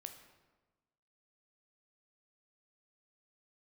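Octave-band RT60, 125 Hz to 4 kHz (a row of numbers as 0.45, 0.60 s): 1.4, 1.4, 1.3, 1.2, 1.0, 0.80 s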